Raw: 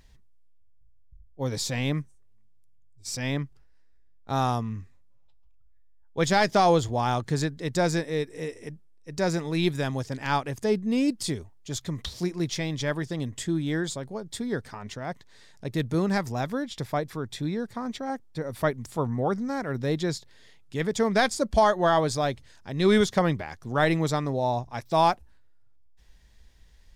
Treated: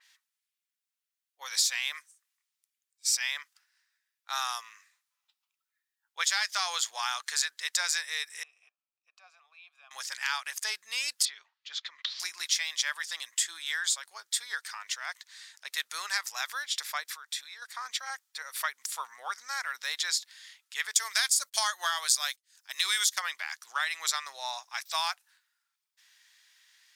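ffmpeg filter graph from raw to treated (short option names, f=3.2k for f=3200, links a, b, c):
-filter_complex "[0:a]asettb=1/sr,asplit=3[a][b][c];[a]atrim=end=8.434[d];[b]atrim=start=8.43:end=9.91,asetpts=PTS-STARTPTS,afade=t=in:d=0.004:c=qsin,afade=t=out:st=1.476:d=0.004:c=qsin,acompressor=threshold=-39dB:ratio=2.5:attack=3.2:release=140:knee=1:detection=peak,asplit=3[e][f][g];[e]bandpass=f=730:t=q:w=8,volume=0dB[h];[f]bandpass=f=1.09k:t=q:w=8,volume=-6dB[i];[g]bandpass=f=2.44k:t=q:w=8,volume=-9dB[j];[h][i][j]amix=inputs=3:normalize=0[k];[c]atrim=start=9.906[l];[d][k]acrossfade=d=0.004:c1=hsin:c2=qsin[m];[m][l]acrossfade=d=0.004:c1=qsin:c2=hsin,asettb=1/sr,asplit=3[n][o][p];[n]atrim=end=11.254[q];[o]atrim=start=11.25:end=12.2,asetpts=PTS-STARTPTS,afade=t=in:d=0.004:c=qsin,afade=t=out:st=0.946:d=0.004:c=qsin,lowpass=f=4.1k:w=0.5412,lowpass=f=4.1k:w=1.3066,acompressor=threshold=-34dB:ratio=2.5:attack=3.2:release=140:knee=1:detection=peak[r];[p]atrim=start=12.196[s];[q][r]acrossfade=d=0.004:c1=hsin:c2=qsin[t];[t][s]acrossfade=d=0.004:c1=qsin:c2=hsin,asettb=1/sr,asplit=3[u][v][w];[u]atrim=end=17.074[x];[v]atrim=start=17.07:end=17.62,asetpts=PTS-STARTPTS,afade=t=in:d=0.004:c=qsin,afade=t=out:st=0.546:d=0.004:c=qsin,lowshelf=f=190:g=-11.5,acompressor=threshold=-40dB:ratio=2.5:attack=3.2:release=140:knee=1:detection=peak[y];[w]atrim=start=17.616[z];[x][y]acrossfade=d=0.004:c1=hsin:c2=qsin[aa];[aa][z]acrossfade=d=0.004:c1=qsin:c2=hsin,asettb=1/sr,asplit=3[ab][ac][ad];[ab]atrim=end=20.944[ae];[ac]atrim=start=20.94:end=23.2,asetpts=PTS-STARTPTS,afade=t=in:d=0.004:c=qsin,afade=t=out:st=2.256:d=0.004:c=qsin,aemphasis=mode=production:type=50kf,agate=range=-37dB:threshold=-37dB:ratio=16:release=100:detection=peak,acompressor=mode=upward:threshold=-42dB:ratio=2.5:attack=3.2:release=140:knee=2.83:detection=peak[af];[ad]atrim=start=23.196[ag];[ae][af]acrossfade=d=0.004:c1=hsin:c2=qsin[ah];[ah][ag]acrossfade=d=0.004:c1=qsin:c2=hsin,highpass=f=1.3k:w=0.5412,highpass=f=1.3k:w=1.3066,acompressor=threshold=-34dB:ratio=4,adynamicequalizer=threshold=0.00224:dfrequency=3800:dqfactor=0.7:tfrequency=3800:tqfactor=0.7:attack=5:release=100:ratio=0.375:range=3:mode=boostabove:tftype=highshelf,volume=6dB"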